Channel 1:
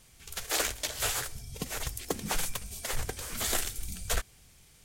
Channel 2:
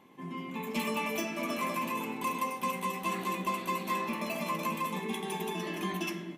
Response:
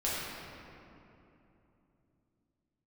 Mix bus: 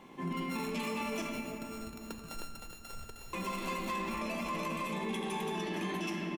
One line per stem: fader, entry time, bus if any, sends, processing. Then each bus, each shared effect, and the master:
−15.0 dB, 0.00 s, send −15 dB, echo send −3.5 dB, samples sorted by size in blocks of 32 samples
−0.5 dB, 0.00 s, muted 0:01.22–0:03.33, send −9 dB, no echo send, low-pass filter 9,600 Hz 12 dB per octave; speech leveller within 3 dB; soft clipping −25 dBFS, distortion −22 dB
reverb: on, RT60 3.0 s, pre-delay 5 ms
echo: repeating echo 311 ms, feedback 50%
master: brickwall limiter −28.5 dBFS, peak gain reduction 9 dB

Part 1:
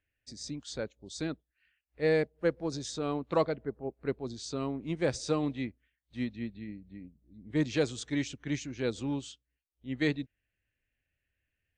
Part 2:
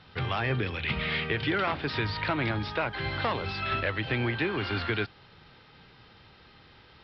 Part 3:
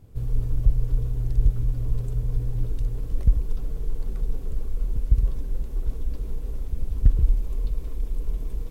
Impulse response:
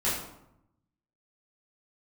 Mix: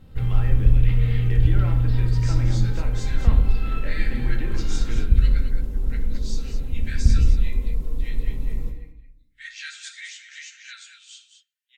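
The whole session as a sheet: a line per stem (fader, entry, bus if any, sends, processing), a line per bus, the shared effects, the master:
+3.0 dB, 1.85 s, send −13 dB, echo send −8 dB, Butterworth high-pass 1,400 Hz 96 dB per octave; string-ensemble chorus
−14.0 dB, 0.00 s, send −11.5 dB, no echo send, no processing
−4.5 dB, 0.00 s, send −10 dB, echo send −17 dB, parametric band 270 Hz −3 dB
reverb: on, RT60 0.80 s, pre-delay 3 ms
echo: single-tap delay 218 ms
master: parametric band 200 Hz +9 dB 2 octaves; comb filter 3.8 ms, depth 37%

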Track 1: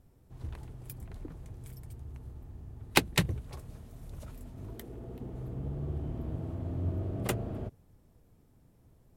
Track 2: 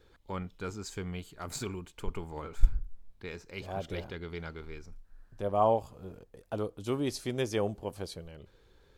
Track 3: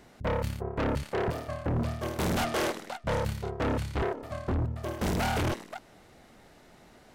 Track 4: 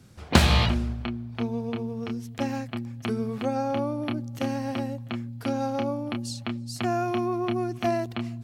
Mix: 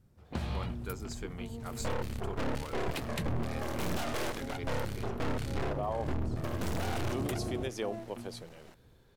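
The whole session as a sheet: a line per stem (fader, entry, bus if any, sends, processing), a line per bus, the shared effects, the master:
−6.5 dB, 0.00 s, no send, automatic gain control gain up to 7 dB
−2.5 dB, 0.25 s, no send, high-pass filter 220 Hz 12 dB per octave
+3.0 dB, 1.60 s, no send, half-wave rectification
−19.0 dB, 0.00 s, no send, tilt shelving filter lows +5 dB, about 1,400 Hz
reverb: not used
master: brickwall limiter −24.5 dBFS, peak gain reduction 15 dB

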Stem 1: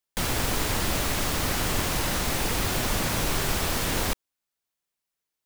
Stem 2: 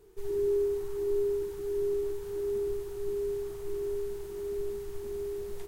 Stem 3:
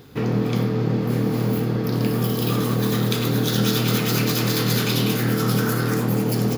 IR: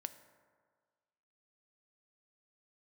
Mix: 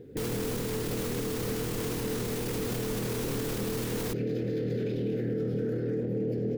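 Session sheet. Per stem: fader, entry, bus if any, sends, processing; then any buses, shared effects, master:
−3.0 dB, 0.00 s, no send, high-shelf EQ 9,200 Hz +5 dB
−9.0 dB, 0.00 s, no send, amplitude modulation by smooth noise
−5.0 dB, 0.00 s, no send, drawn EQ curve 180 Hz 0 dB, 480 Hz +9 dB, 1,100 Hz −27 dB, 1,700 Hz −7 dB, 12,000 Hz −30 dB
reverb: not used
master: brickwall limiter −23.5 dBFS, peak gain reduction 13.5 dB

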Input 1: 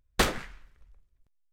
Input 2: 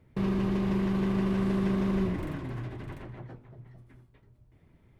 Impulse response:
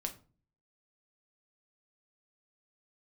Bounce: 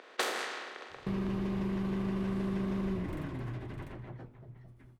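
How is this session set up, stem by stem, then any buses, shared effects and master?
−3.0 dB, 0.00 s, no send, compressor on every frequency bin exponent 0.4; low-pass that shuts in the quiet parts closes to 2,600 Hz, open at −19.5 dBFS; high-pass filter 350 Hz 24 dB per octave
−2.0 dB, 0.90 s, no send, no processing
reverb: not used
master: downward compressor 2 to 1, threshold −33 dBFS, peak gain reduction 7 dB

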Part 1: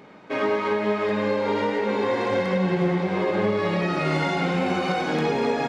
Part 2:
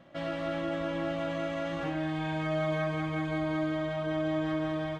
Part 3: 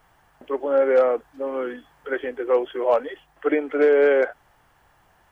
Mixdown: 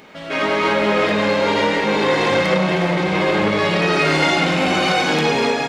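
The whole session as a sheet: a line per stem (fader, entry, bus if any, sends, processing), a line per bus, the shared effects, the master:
+1.5 dB, 0.00 s, no send, parametric band 2,700 Hz +2.5 dB; mains-hum notches 60/120/180/240/300/360/420 Hz
+0.5 dB, 0.00 s, no send, no processing
−11.0 dB, 0.00 s, no send, no processing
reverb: not used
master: high-shelf EQ 2,400 Hz +10 dB; automatic gain control gain up to 5.5 dB; saturating transformer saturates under 700 Hz

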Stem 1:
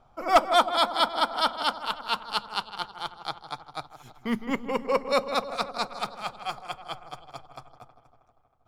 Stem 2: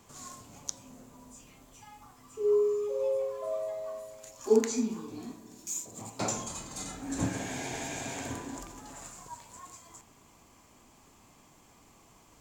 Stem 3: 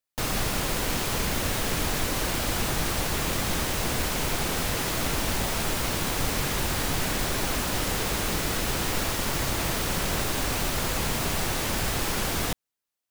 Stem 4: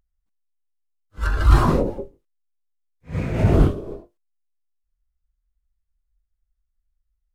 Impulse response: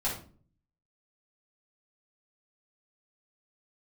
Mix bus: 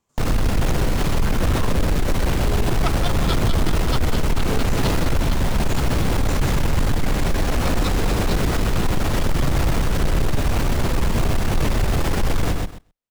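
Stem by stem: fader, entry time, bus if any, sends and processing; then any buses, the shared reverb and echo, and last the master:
−13.5 dB, 2.50 s, no send, no echo send, tilt shelving filter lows −7.5 dB, about 830 Hz; tremolo along a rectified sine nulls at 11 Hz
−13.0 dB, 0.00 s, no send, no echo send, no processing
+0.5 dB, 0.00 s, no send, echo send −4.5 dB, spectral tilt −2.5 dB per octave; brickwall limiter −17.5 dBFS, peak gain reduction 11 dB
−16.0 dB, 0.00 s, no send, no echo send, no processing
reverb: not used
echo: repeating echo 127 ms, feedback 21%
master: leveller curve on the samples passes 2

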